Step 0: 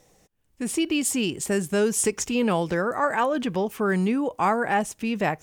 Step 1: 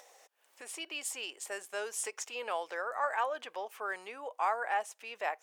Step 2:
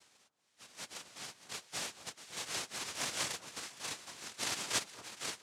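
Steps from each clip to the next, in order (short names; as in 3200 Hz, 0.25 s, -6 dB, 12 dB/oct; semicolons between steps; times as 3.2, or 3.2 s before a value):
HPF 580 Hz 24 dB/oct; high shelf 4200 Hz -5.5 dB; upward compressor, threshold -40 dBFS; gain -7.5 dB
inharmonic rescaling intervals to 114%; noise vocoder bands 1; echo with dull and thin repeats by turns 0.232 s, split 1400 Hz, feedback 64%, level -13 dB; gain -1.5 dB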